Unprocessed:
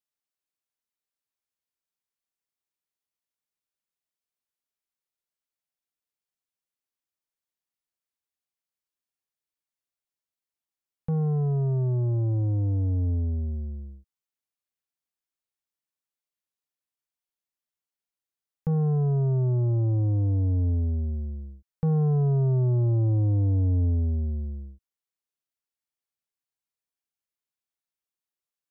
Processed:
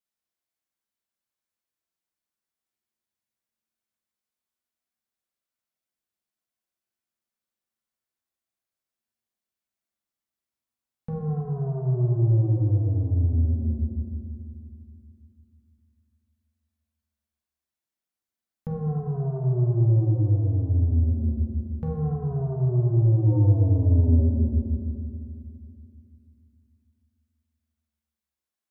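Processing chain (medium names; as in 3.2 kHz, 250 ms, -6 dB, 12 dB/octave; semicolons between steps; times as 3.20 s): compression, threshold -25 dBFS, peak gain reduction 3.5 dB; 23.26–24.22 s: small resonant body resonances 200/380/560/900 Hz, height 18 dB -> 13 dB; reverberation RT60 2.5 s, pre-delay 5 ms, DRR -2.5 dB; trim -2.5 dB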